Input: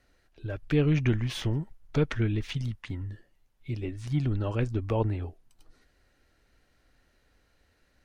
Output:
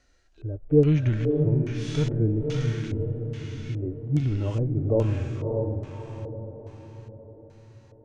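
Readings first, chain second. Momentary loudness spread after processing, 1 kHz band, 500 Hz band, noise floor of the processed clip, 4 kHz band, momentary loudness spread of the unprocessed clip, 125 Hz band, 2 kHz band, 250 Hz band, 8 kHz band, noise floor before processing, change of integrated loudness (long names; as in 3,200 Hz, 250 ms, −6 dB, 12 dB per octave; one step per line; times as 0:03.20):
17 LU, −2.5 dB, +7.5 dB, −55 dBFS, −2.5 dB, 13 LU, +5.0 dB, −3.5 dB, +4.5 dB, can't be measured, −69 dBFS, +4.0 dB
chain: feedback delay with all-pass diffusion 584 ms, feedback 50%, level −5 dB
harmonic and percussive parts rebalanced percussive −16 dB
auto-filter low-pass square 1.2 Hz 550–6,700 Hz
level +4 dB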